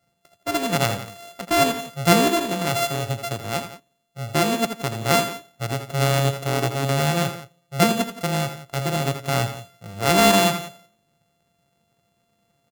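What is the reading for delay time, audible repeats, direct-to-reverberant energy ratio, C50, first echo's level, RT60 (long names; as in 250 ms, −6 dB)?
81 ms, 2, no reverb audible, no reverb audible, −10.0 dB, no reverb audible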